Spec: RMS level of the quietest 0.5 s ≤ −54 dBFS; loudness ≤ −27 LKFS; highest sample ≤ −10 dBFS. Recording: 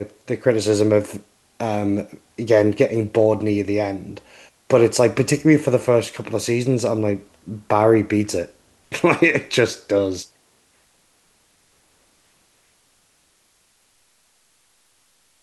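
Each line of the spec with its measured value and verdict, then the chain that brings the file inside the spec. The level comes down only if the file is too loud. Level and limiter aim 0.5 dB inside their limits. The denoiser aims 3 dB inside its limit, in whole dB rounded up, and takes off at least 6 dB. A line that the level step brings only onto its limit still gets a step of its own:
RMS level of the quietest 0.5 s −62 dBFS: in spec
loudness −19.5 LKFS: out of spec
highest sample −3.0 dBFS: out of spec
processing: level −8 dB

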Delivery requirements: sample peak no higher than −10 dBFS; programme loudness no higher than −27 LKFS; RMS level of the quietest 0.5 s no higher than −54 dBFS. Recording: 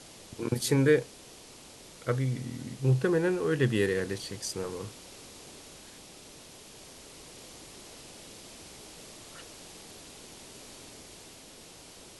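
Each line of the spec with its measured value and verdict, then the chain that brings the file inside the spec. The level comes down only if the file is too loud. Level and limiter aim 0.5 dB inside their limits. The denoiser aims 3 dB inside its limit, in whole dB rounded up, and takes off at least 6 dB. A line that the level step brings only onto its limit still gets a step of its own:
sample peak −11.0 dBFS: in spec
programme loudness −29.0 LKFS: in spec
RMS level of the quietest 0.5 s −50 dBFS: out of spec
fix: broadband denoise 7 dB, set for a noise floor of −50 dBFS

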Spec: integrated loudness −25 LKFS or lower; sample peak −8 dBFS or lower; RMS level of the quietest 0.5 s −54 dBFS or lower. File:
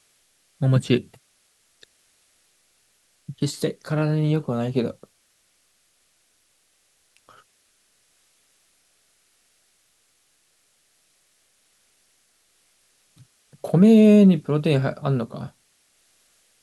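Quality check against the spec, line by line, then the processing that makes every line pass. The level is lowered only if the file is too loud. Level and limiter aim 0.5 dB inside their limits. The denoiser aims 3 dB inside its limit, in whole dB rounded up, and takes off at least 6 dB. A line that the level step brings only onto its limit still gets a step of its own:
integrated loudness −20.0 LKFS: out of spec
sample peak −5.5 dBFS: out of spec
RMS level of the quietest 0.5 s −65 dBFS: in spec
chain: level −5.5 dB

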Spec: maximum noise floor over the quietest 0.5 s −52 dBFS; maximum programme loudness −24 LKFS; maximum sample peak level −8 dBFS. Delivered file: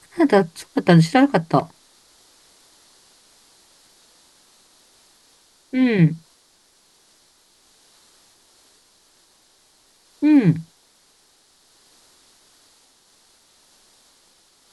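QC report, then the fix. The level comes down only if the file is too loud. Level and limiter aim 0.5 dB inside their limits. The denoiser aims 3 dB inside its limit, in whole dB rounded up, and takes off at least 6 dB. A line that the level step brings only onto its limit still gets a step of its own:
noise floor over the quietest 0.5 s −58 dBFS: in spec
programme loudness −18.0 LKFS: out of spec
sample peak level −3.0 dBFS: out of spec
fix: level −6.5 dB

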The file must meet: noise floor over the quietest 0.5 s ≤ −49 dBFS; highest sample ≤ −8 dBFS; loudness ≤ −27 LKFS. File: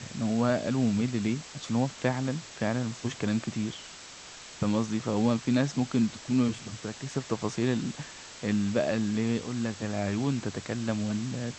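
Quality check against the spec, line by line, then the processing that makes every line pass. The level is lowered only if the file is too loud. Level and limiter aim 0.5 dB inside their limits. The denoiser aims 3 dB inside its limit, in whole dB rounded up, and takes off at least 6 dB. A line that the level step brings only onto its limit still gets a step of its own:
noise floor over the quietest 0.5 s −46 dBFS: out of spec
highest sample −11.0 dBFS: in spec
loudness −29.5 LKFS: in spec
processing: broadband denoise 6 dB, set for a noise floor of −46 dBFS

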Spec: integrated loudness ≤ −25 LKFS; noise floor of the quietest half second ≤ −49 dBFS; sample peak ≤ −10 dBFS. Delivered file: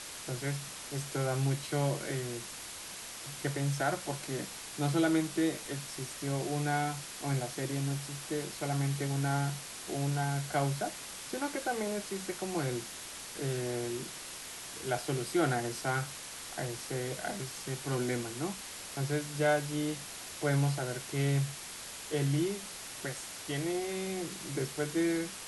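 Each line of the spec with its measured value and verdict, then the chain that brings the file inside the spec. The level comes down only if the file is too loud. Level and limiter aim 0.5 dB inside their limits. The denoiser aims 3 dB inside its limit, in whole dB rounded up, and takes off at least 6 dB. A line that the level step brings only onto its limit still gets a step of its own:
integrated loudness −34.5 LKFS: in spec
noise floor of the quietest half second −45 dBFS: out of spec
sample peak −17.5 dBFS: in spec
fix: broadband denoise 7 dB, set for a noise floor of −45 dBFS

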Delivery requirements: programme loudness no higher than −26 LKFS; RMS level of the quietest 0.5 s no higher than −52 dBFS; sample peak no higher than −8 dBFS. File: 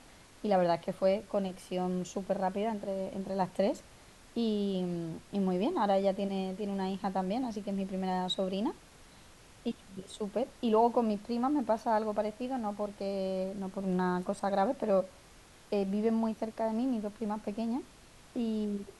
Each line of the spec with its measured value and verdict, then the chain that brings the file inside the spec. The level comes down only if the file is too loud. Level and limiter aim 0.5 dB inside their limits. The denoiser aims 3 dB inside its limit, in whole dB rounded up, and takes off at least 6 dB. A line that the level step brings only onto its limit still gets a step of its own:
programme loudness −33.0 LKFS: in spec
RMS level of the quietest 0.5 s −56 dBFS: in spec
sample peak −15.5 dBFS: in spec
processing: no processing needed

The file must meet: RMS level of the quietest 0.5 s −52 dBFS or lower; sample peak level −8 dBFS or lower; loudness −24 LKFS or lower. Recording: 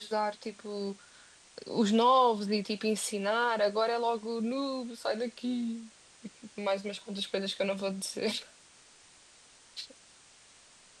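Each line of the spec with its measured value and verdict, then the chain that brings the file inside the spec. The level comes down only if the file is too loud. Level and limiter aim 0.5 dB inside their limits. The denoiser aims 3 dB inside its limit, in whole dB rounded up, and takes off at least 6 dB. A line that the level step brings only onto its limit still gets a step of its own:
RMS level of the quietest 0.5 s −58 dBFS: in spec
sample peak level −14.0 dBFS: in spec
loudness −31.0 LKFS: in spec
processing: no processing needed

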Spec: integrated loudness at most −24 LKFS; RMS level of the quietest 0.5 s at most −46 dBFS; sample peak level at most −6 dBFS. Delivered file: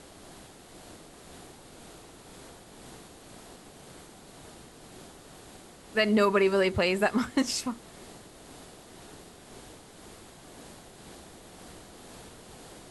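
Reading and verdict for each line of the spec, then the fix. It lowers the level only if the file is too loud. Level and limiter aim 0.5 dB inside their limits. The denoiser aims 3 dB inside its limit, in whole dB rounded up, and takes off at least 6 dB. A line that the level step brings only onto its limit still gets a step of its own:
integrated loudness −26.0 LKFS: in spec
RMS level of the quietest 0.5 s −50 dBFS: in spec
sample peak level −11.5 dBFS: in spec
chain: no processing needed

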